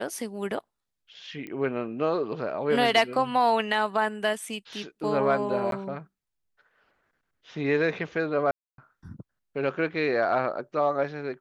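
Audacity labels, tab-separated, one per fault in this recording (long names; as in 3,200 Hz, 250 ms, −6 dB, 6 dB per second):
1.470000	1.470000	click −26 dBFS
5.710000	5.720000	drop-out 12 ms
8.510000	8.780000	drop-out 272 ms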